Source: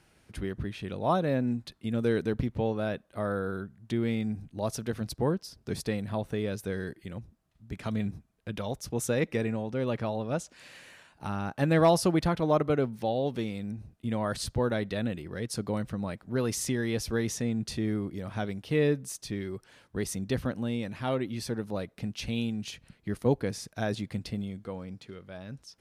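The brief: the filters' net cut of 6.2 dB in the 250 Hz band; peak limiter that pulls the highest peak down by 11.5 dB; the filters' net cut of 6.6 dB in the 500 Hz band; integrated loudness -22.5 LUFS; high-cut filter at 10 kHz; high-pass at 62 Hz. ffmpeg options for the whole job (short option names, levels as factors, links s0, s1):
-af "highpass=62,lowpass=10000,equalizer=f=250:t=o:g=-6.5,equalizer=f=500:t=o:g=-6.5,volume=6.31,alimiter=limit=0.282:level=0:latency=1"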